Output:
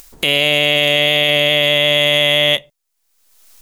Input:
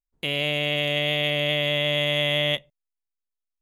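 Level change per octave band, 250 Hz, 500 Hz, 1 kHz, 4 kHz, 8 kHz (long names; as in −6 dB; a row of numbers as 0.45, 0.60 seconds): +6.5, +9.5, +9.5, +11.5, +15.5 decibels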